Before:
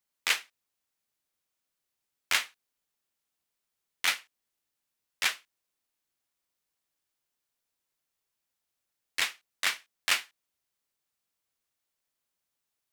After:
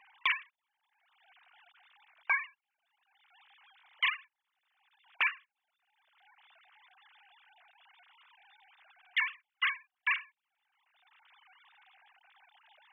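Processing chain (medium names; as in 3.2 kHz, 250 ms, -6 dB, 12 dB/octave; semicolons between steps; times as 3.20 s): formants replaced by sine waves; three bands compressed up and down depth 100%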